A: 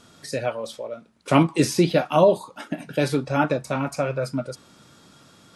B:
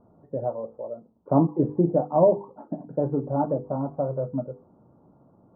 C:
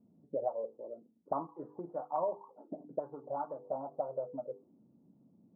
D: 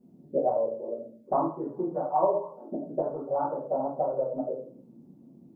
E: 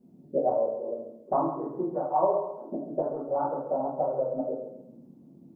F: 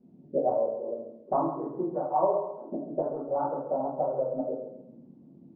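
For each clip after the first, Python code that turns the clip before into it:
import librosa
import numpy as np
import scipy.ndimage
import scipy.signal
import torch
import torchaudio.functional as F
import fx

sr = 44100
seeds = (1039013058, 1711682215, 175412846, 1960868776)

y1 = scipy.signal.sosfilt(scipy.signal.butter(6, 930.0, 'lowpass', fs=sr, output='sos'), x)
y1 = fx.hum_notches(y1, sr, base_hz=50, count=10)
y1 = F.gain(torch.from_numpy(y1), -1.5).numpy()
y2 = fx.auto_wah(y1, sr, base_hz=210.0, top_hz=1200.0, q=2.6, full_db=-20.5, direction='up')
y2 = fx.rider(y2, sr, range_db=4, speed_s=2.0)
y2 = F.gain(torch.from_numpy(y2), -4.5).numpy()
y3 = fx.room_shoebox(y2, sr, seeds[0], volume_m3=43.0, walls='mixed', distance_m=1.3)
y3 = F.gain(torch.from_numpy(y3), 1.5).numpy()
y4 = fx.echo_feedback(y3, sr, ms=135, feedback_pct=33, wet_db=-10.0)
y5 = fx.air_absorb(y4, sr, metres=220.0)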